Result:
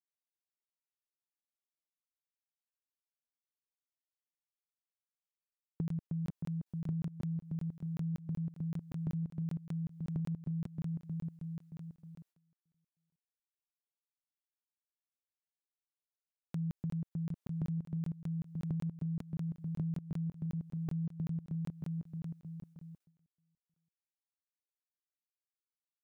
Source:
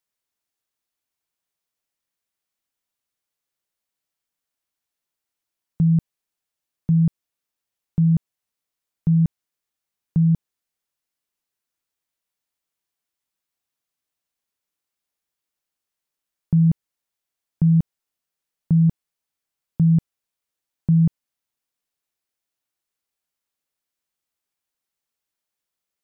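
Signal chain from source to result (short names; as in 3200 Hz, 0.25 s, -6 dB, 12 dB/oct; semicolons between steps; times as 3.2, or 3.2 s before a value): HPF 150 Hz 6 dB/oct; feedback echo 0.312 s, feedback 59%, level -3 dB; gate with hold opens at -43 dBFS; compressor 6:1, threshold -29 dBFS, peak gain reduction 12.5 dB; crackling interface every 0.19 s, samples 1024, zero, from 0.37; gain -6 dB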